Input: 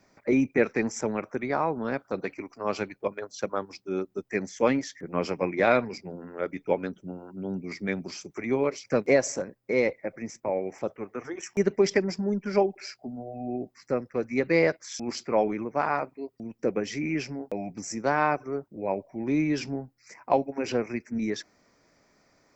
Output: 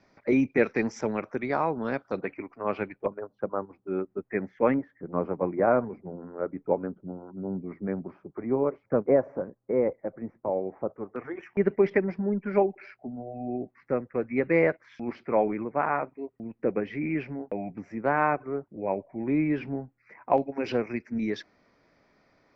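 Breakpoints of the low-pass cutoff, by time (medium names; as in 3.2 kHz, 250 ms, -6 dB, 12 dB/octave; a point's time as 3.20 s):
low-pass 24 dB/octave
5 kHz
from 2.21 s 2.6 kHz
from 3.06 s 1.3 kHz
from 3.87 s 2 kHz
from 4.74 s 1.3 kHz
from 11.16 s 2.4 kHz
from 20.38 s 4.3 kHz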